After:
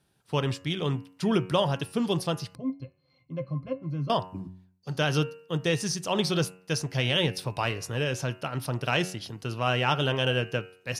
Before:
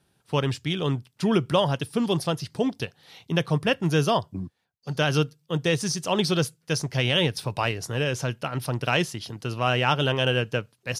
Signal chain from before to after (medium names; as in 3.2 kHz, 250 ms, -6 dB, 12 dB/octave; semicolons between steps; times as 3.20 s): de-hum 92.28 Hz, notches 32; 2.55–4.10 s: pitch-class resonator C, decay 0.1 s; trim -2.5 dB